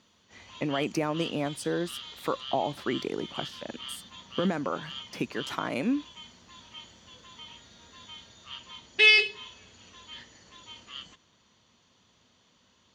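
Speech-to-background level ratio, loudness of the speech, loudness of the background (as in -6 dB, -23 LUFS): -4.0 dB, -32.5 LUFS, -28.5 LUFS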